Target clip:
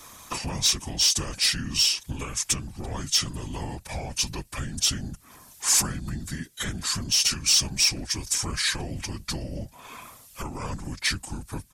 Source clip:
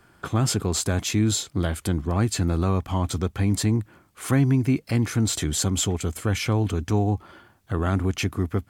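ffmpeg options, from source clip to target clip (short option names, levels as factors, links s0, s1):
-af "acompressor=threshold=0.0178:ratio=4,afftfilt=real='hypot(re,im)*cos(2*PI*random(0))':imag='hypot(re,im)*sin(2*PI*random(1))':win_size=512:overlap=0.75,crystalizer=i=7.5:c=0,asoftclip=type=tanh:threshold=0.0891,asetrate=32667,aresample=44100,volume=2.51"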